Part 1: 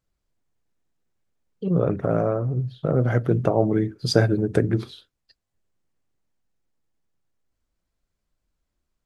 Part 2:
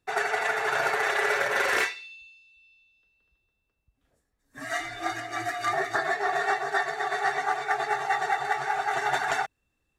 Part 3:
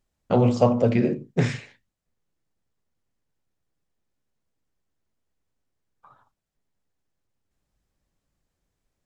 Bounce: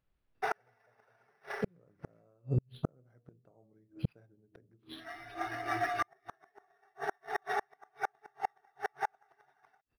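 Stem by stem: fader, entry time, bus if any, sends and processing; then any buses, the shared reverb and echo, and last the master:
-1.5 dB, 0.00 s, no send, de-hum 79.95 Hz, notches 15
-0.5 dB, 0.35 s, no send, high shelf 4500 Hz -7 dB; auto duck -16 dB, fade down 0.30 s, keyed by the first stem
-11.0 dB, 0.25 s, no send, fixed phaser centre 680 Hz, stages 4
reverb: off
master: flipped gate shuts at -19 dBFS, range -42 dB; decimation joined by straight lines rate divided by 6×

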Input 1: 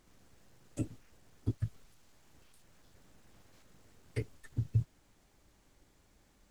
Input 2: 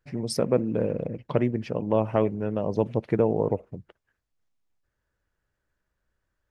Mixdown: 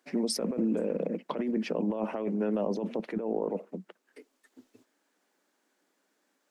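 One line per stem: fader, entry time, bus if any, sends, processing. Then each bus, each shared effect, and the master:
-5.0 dB, 0.00 s, no send, elliptic high-pass 250 Hz, stop band 40 dB; auto duck -8 dB, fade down 1.80 s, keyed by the second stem
0.0 dB, 0.00 s, no send, steep high-pass 180 Hz 72 dB/oct; negative-ratio compressor -29 dBFS, ratio -1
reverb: off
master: limiter -19.5 dBFS, peak gain reduction 6 dB

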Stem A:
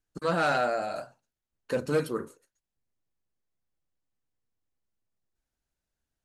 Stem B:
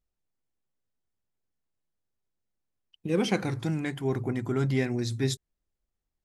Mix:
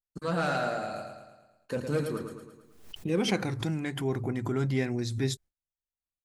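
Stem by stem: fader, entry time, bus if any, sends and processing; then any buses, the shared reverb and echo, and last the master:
-5.0 dB, 0.00 s, no send, echo send -6.5 dB, tone controls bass +7 dB, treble +2 dB
-2.0 dB, 0.00 s, no send, no echo send, backwards sustainer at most 81 dB/s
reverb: off
echo: feedback echo 0.11 s, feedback 53%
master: gate with hold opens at -59 dBFS

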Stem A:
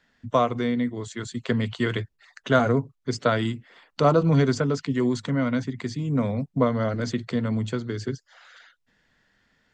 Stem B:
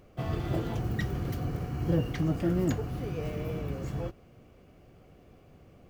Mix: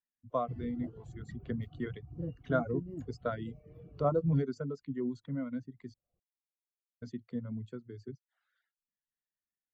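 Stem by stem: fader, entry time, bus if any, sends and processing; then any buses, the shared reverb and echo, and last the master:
-10.5 dB, 0.00 s, muted 5.94–7.02, no send, dry
-1.5 dB, 0.30 s, no send, auto duck -8 dB, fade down 0.90 s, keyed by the first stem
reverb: off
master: reverb removal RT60 0.61 s; spectral expander 1.5:1

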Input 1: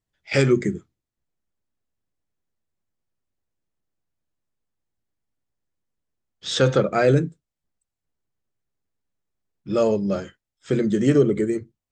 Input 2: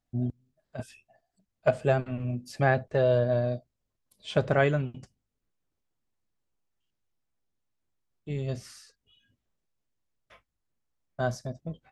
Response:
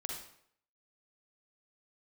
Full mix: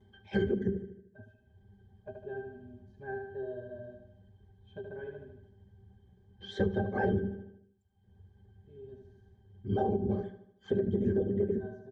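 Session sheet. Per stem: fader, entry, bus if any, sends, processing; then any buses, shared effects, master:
+2.5 dB, 0.00 s, no send, echo send -14.5 dB, upward compressor, threshold -30 dBFS; whisperiser; shaped vibrato square 4.3 Hz, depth 160 cents
-1.0 dB, 0.40 s, no send, echo send -15 dB, ripple EQ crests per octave 1.5, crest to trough 8 dB; auto duck -10 dB, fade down 1.85 s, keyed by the first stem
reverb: off
echo: feedback echo 76 ms, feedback 51%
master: octave resonator G, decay 0.11 s; small resonant body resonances 340/620 Hz, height 12 dB, ringing for 85 ms; compressor 12:1, threshold -25 dBFS, peak gain reduction 10.5 dB

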